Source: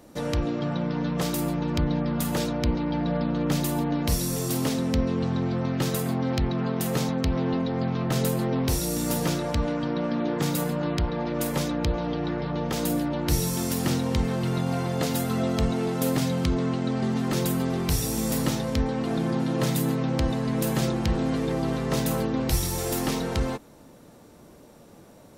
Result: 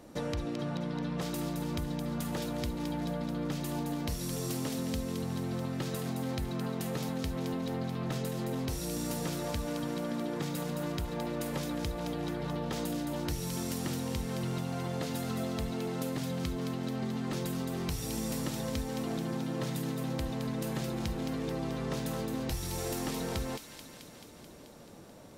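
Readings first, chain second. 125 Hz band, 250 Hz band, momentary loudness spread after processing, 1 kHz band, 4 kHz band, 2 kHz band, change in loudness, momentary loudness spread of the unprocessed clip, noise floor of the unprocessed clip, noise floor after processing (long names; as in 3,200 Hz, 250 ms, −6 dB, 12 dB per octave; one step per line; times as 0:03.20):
−9.0 dB, −8.5 dB, 1 LU, −8.5 dB, −7.5 dB, −8.0 dB, −8.5 dB, 2 LU, −50 dBFS, −51 dBFS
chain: downward compressor, threshold −30 dBFS, peak gain reduction 12 dB
high-shelf EQ 10,000 Hz −5.5 dB
delay with a high-pass on its return 217 ms, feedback 72%, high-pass 2,200 Hz, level −5.5 dB
level −1.5 dB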